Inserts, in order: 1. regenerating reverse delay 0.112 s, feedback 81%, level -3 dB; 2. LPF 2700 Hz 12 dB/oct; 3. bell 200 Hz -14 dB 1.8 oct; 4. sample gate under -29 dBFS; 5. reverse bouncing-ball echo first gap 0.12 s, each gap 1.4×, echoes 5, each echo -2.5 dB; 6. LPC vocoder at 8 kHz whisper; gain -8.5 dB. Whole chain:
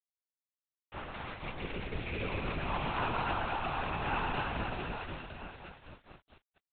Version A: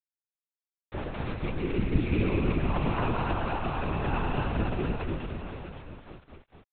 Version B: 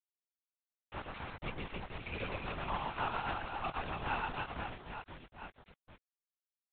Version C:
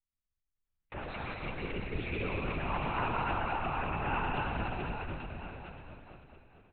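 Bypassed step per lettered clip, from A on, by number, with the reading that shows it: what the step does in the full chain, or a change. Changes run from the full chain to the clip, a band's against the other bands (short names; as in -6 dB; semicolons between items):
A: 3, 250 Hz band +10.0 dB; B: 1, 250 Hz band -1.5 dB; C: 4, distortion -6 dB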